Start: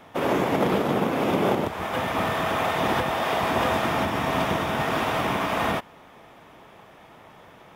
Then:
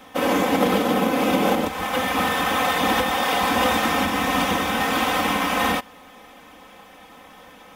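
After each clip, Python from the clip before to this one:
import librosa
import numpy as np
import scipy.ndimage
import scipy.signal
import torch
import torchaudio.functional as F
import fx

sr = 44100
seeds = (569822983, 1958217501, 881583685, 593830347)

y = fx.high_shelf(x, sr, hz=3300.0, db=8.0)
y = y + 0.91 * np.pad(y, (int(3.9 * sr / 1000.0), 0))[:len(y)]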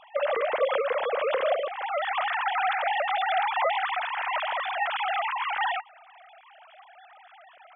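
y = fx.sine_speech(x, sr)
y = y * 10.0 ** (-6.0 / 20.0)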